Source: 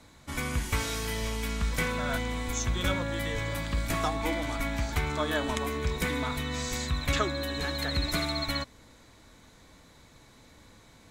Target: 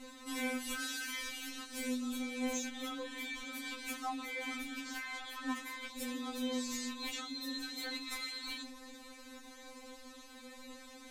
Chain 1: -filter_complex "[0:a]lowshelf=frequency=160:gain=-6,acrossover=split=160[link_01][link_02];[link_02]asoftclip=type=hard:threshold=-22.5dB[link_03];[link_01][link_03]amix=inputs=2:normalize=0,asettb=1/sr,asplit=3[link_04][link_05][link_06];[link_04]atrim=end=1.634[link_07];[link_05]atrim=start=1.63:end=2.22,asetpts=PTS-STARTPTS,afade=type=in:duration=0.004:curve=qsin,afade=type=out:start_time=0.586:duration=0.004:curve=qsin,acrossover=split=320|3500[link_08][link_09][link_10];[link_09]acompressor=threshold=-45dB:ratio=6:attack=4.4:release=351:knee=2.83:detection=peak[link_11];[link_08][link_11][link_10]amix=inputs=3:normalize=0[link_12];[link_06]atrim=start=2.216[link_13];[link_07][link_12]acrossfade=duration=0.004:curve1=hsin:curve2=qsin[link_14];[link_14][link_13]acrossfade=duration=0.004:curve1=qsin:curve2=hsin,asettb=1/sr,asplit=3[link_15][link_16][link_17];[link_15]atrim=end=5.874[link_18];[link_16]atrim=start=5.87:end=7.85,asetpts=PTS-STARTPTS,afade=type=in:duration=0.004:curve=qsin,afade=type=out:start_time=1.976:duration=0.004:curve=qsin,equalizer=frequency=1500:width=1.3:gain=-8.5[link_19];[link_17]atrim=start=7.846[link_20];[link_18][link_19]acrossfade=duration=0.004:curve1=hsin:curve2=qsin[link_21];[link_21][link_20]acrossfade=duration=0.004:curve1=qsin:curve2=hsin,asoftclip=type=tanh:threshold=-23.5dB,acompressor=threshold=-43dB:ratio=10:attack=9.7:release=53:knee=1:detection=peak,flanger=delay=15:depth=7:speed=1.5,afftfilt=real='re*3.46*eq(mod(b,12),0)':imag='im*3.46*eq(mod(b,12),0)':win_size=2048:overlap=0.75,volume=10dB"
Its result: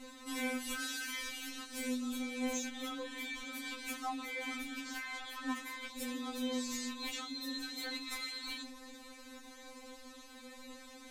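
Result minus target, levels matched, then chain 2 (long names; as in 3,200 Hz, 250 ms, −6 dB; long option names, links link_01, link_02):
hard clipping: distortion +26 dB
-filter_complex "[0:a]lowshelf=frequency=160:gain=-6,acrossover=split=160[link_01][link_02];[link_02]asoftclip=type=hard:threshold=-15dB[link_03];[link_01][link_03]amix=inputs=2:normalize=0,asettb=1/sr,asplit=3[link_04][link_05][link_06];[link_04]atrim=end=1.634[link_07];[link_05]atrim=start=1.63:end=2.22,asetpts=PTS-STARTPTS,afade=type=in:duration=0.004:curve=qsin,afade=type=out:start_time=0.586:duration=0.004:curve=qsin,acrossover=split=320|3500[link_08][link_09][link_10];[link_09]acompressor=threshold=-45dB:ratio=6:attack=4.4:release=351:knee=2.83:detection=peak[link_11];[link_08][link_11][link_10]amix=inputs=3:normalize=0[link_12];[link_06]atrim=start=2.216[link_13];[link_07][link_12]acrossfade=duration=0.004:curve1=hsin:curve2=qsin[link_14];[link_14][link_13]acrossfade=duration=0.004:curve1=qsin:curve2=hsin,asettb=1/sr,asplit=3[link_15][link_16][link_17];[link_15]atrim=end=5.874[link_18];[link_16]atrim=start=5.87:end=7.85,asetpts=PTS-STARTPTS,afade=type=in:duration=0.004:curve=qsin,afade=type=out:start_time=1.976:duration=0.004:curve=qsin,equalizer=frequency=1500:width=1.3:gain=-8.5[link_19];[link_17]atrim=start=7.846[link_20];[link_18][link_19]acrossfade=duration=0.004:curve1=hsin:curve2=qsin[link_21];[link_21][link_20]acrossfade=duration=0.004:curve1=qsin:curve2=hsin,asoftclip=type=tanh:threshold=-23.5dB,acompressor=threshold=-43dB:ratio=10:attack=9.7:release=53:knee=1:detection=peak,flanger=delay=15:depth=7:speed=1.5,afftfilt=real='re*3.46*eq(mod(b,12),0)':imag='im*3.46*eq(mod(b,12),0)':win_size=2048:overlap=0.75,volume=10dB"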